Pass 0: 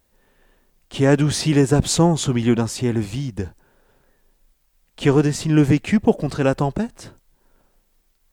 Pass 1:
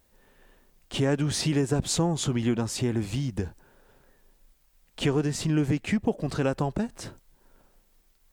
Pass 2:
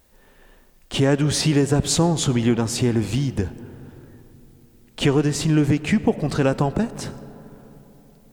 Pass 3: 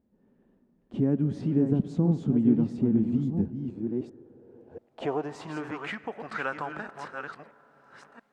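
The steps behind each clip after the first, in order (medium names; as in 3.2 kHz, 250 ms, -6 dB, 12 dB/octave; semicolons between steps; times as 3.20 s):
compression 2.5:1, threshold -26 dBFS, peak gain reduction 11.5 dB
reverberation RT60 3.7 s, pre-delay 35 ms, DRR 15.5 dB; trim +6.5 dB
chunks repeated in reverse 683 ms, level -6 dB; band-pass sweep 220 Hz -> 1.4 kHz, 3.55–5.97 s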